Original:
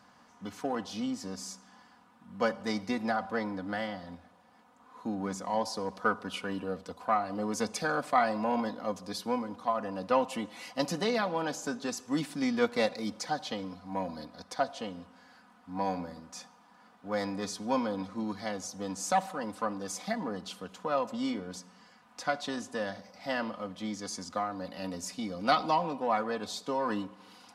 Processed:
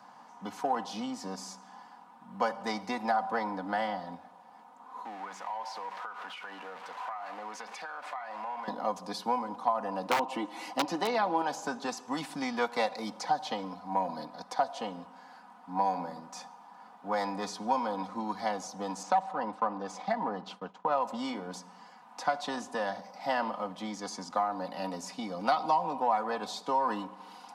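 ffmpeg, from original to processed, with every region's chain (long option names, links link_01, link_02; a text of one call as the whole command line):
ffmpeg -i in.wav -filter_complex "[0:a]asettb=1/sr,asplit=3[link_01][link_02][link_03];[link_01]atrim=end=5.054[link_04];[link_02]atrim=start=5.05:end=8.68,asetpts=PTS-STARTPTS,afade=type=in:duration=0.004:curve=qsin,afade=type=out:start_time=3.626:duration=0.004:curve=qsin,aeval=exprs='val(0)+0.5*0.0133*sgn(val(0))':channel_layout=same,bandpass=frequency=1900:width_type=q:width=1.2,acompressor=threshold=-41dB:ratio=12:attack=3.2:release=140:knee=1:detection=peak[link_05];[link_03]atrim=start=8.676[link_06];[link_04][link_05]acrossfade=duration=0.004:curve1=hsin:curve2=qsin[link_07];[link_07][link_06]acrossfade=duration=0.004:curve1=qsin:curve2=hsin,asettb=1/sr,asplit=3[link_08][link_09][link_10];[link_08]atrim=end=10.054[link_11];[link_09]atrim=start=10.05:end=11.42,asetpts=PTS-STARTPTS,afade=type=in:duration=0.004:curve=qsin,afade=type=out:start_time=1.366:duration=0.004:curve=qsin,equalizer=frequency=320:width=4:gain=15,aeval=exprs='(mod(6.68*val(0)+1,2)-1)/6.68':channel_layout=same[link_12];[link_10]atrim=start=11.416[link_13];[link_11][link_12]acrossfade=duration=0.004:curve1=hsin:curve2=qsin[link_14];[link_14][link_13]acrossfade=duration=0.004:curve1=qsin:curve2=hsin,asettb=1/sr,asplit=3[link_15][link_16][link_17];[link_15]atrim=end=19.034[link_18];[link_16]atrim=start=19.03:end=21.01,asetpts=PTS-STARTPTS,afade=type=in:duration=0.004:curve=qsin,afade=type=out:start_time=1.976:duration=0.004:curve=qsin,agate=range=-33dB:threshold=-45dB:ratio=3:release=100:detection=peak,adynamicsmooth=sensitivity=2:basefreq=4100[link_19];[link_17]atrim=start=21.006[link_20];[link_18][link_19]acrossfade=duration=0.004:curve1=hsin:curve2=qsin[link_21];[link_21][link_20]acrossfade=duration=0.004:curve1=qsin:curve2=hsin,highpass=frequency=130:width=0.5412,highpass=frequency=130:width=1.3066,equalizer=frequency=860:width=2.1:gain=13,acrossover=split=620|5500[link_22][link_23][link_24];[link_22]acompressor=threshold=-35dB:ratio=4[link_25];[link_23]acompressor=threshold=-27dB:ratio=4[link_26];[link_24]acompressor=threshold=-49dB:ratio=4[link_27];[link_25][link_26][link_27]amix=inputs=3:normalize=0" out.wav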